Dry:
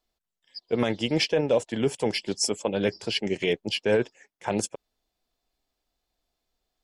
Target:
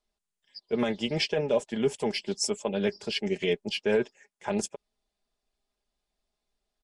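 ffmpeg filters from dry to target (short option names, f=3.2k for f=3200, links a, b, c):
-af "aecho=1:1:4.9:0.58,volume=-4dB" -ar 22050 -c:a nellymoser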